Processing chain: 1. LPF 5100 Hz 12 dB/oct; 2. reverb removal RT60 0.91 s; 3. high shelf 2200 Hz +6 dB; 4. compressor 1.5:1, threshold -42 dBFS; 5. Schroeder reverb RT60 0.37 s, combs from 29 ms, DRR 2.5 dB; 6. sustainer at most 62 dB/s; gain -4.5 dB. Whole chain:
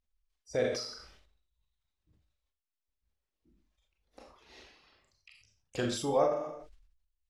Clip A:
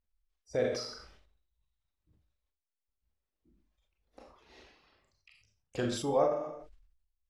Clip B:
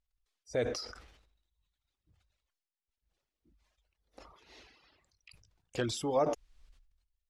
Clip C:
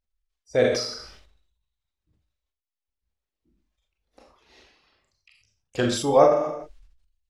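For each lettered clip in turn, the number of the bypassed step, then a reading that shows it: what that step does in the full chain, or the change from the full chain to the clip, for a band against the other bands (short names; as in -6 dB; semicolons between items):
3, 8 kHz band -2.0 dB; 5, 125 Hz band +1.5 dB; 4, mean gain reduction 8.0 dB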